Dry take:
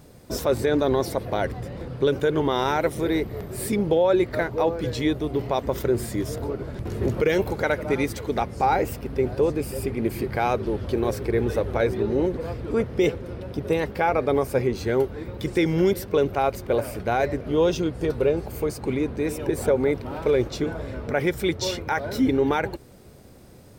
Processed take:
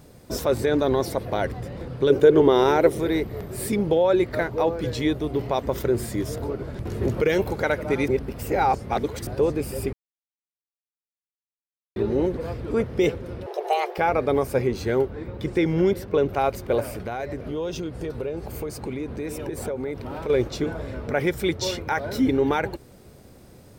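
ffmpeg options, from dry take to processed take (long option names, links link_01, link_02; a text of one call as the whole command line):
ffmpeg -i in.wav -filter_complex "[0:a]asettb=1/sr,asplit=3[link_01][link_02][link_03];[link_01]atrim=end=2.104[link_04];[link_02]atrim=start=2.1:end=2.98,asetpts=PTS-STARTPTS,afade=type=in:duration=0.004:curve=qsin,afade=type=out:start_time=0.876:duration=0.004:curve=qsin,equalizer=frequency=400:width=1.5:gain=10[link_05];[link_03]atrim=start=2.976[link_06];[link_04][link_05]acrossfade=duration=0.004:curve1=hsin:curve2=qsin[link_07];[link_07][link_06]acrossfade=duration=0.004:curve1=qsin:curve2=hsin,asettb=1/sr,asplit=3[link_08][link_09][link_10];[link_08]atrim=end=13.464[link_11];[link_09]atrim=start=13.46:end=13.98,asetpts=PTS-STARTPTS,afade=type=in:duration=0.004:curve=qsin,afade=type=out:start_time=0.516:duration=0.004:curve=qsin,afreqshift=300[link_12];[link_10]atrim=start=13.976[link_13];[link_11][link_12]acrossfade=duration=0.004:curve1=hsin:curve2=qsin[link_14];[link_14][link_13]acrossfade=duration=0.004:curve1=qsin:curve2=hsin,asettb=1/sr,asplit=3[link_15][link_16][link_17];[link_15]atrim=end=14.994[link_18];[link_16]atrim=start=14.99:end=16.29,asetpts=PTS-STARTPTS,afade=type=in:duration=0.004:curve=qsin,afade=type=out:start_time=1.296:duration=0.004:curve=qsin,highshelf=frequency=4100:gain=-9.5[link_19];[link_17]atrim=start=16.286[link_20];[link_18][link_19]acrossfade=duration=0.004:curve1=hsin:curve2=qsin[link_21];[link_21][link_20]acrossfade=duration=0.004:curve1=qsin:curve2=hsin,asettb=1/sr,asplit=3[link_22][link_23][link_24];[link_22]atrim=end=16.854[link_25];[link_23]atrim=start=16.85:end=20.3,asetpts=PTS-STARTPTS,afade=type=in:duration=0.004:curve=qsin,afade=type=out:start_time=3.446:duration=0.004:curve=qsin,acompressor=threshold=-28dB:ratio=3:attack=3.2:release=140:knee=1:detection=peak[link_26];[link_24]atrim=start=20.296[link_27];[link_25][link_26]acrossfade=duration=0.004:curve1=hsin:curve2=qsin[link_28];[link_28][link_27]acrossfade=duration=0.004:curve1=qsin:curve2=hsin,asplit=5[link_29][link_30][link_31][link_32][link_33];[link_29]atrim=end=8.082[link_34];[link_30]atrim=start=8.078:end=9.272,asetpts=PTS-STARTPTS,areverse[link_35];[link_31]atrim=start=9.268:end=9.93,asetpts=PTS-STARTPTS,afade=type=out:start_time=0.658:duration=0.004:curve=hsin[link_36];[link_32]atrim=start=9.93:end=11.96,asetpts=PTS-STARTPTS,volume=0[link_37];[link_33]atrim=start=11.96,asetpts=PTS-STARTPTS,afade=type=in:duration=0.004:curve=hsin[link_38];[link_34][link_35]acrossfade=duration=0.004:curve1=hsin:curve2=hsin[link_39];[link_36][link_37][link_38]concat=n=3:v=0:a=1[link_40];[link_39][link_40]acrossfade=duration=0.004:curve1=hsin:curve2=hsin" out.wav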